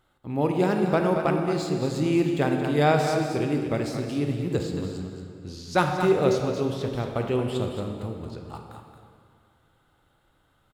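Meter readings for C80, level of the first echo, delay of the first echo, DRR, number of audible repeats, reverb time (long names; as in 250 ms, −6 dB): 4.0 dB, −8.0 dB, 225 ms, 2.0 dB, 1, 2.2 s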